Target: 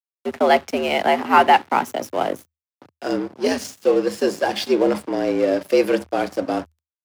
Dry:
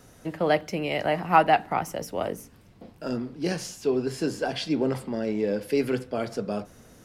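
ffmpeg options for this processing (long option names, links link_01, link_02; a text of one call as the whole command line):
ffmpeg -i in.wav -af "apsyclip=13.5dB,aeval=exprs='sgn(val(0))*max(abs(val(0))-0.0422,0)':channel_layout=same,afreqshift=78,volume=-5dB" out.wav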